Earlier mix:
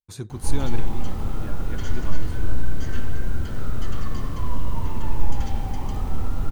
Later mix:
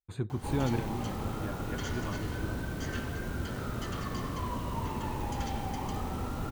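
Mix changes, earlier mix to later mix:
speech: add boxcar filter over 8 samples; background: add high-pass 180 Hz 6 dB/octave

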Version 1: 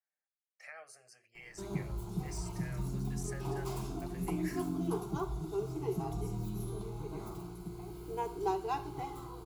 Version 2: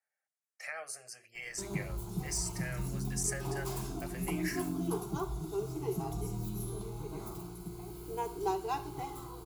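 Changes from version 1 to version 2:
speech +7.5 dB; master: add treble shelf 6.2 kHz +9 dB

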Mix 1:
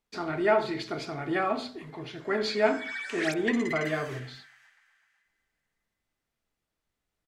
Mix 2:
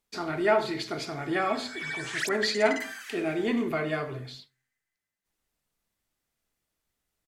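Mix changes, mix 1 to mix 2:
background: entry -1.05 s; master: remove low-pass 3.7 kHz 6 dB/octave

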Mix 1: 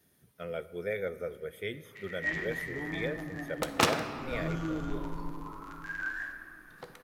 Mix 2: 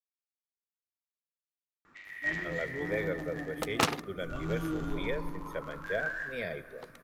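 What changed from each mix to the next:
speech: entry +2.05 s; second sound: send off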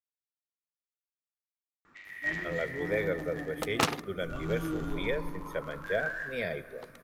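speech +3.0 dB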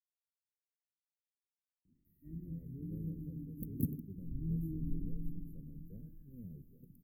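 speech -4.5 dB; second sound +3.0 dB; master: add inverse Chebyshev band-stop 740–6100 Hz, stop band 60 dB

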